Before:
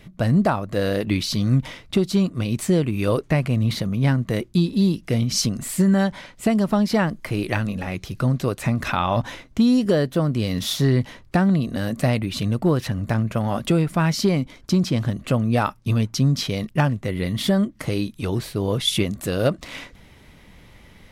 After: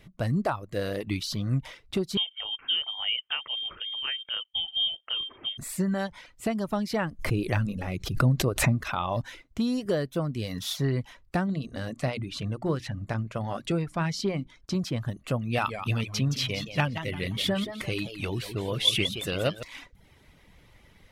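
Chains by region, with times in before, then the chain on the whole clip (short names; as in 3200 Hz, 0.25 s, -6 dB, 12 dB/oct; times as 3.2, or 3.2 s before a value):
2.17–5.58 brick-wall FIR high-pass 180 Hz + air absorption 140 m + inverted band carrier 3400 Hz
7.19–8.83 low shelf 430 Hz +7 dB + backwards sustainer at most 95 dB/s
11.46–14.75 LPF 7900 Hz + notches 60/120/180/240/300/360 Hz
15.41–19.63 bell 2700 Hz +9.5 dB 0.99 oct + warbling echo 0.171 s, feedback 38%, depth 179 cents, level -8 dB
whole clip: reverb removal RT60 0.53 s; bell 220 Hz -3.5 dB 0.79 oct; gain -6.5 dB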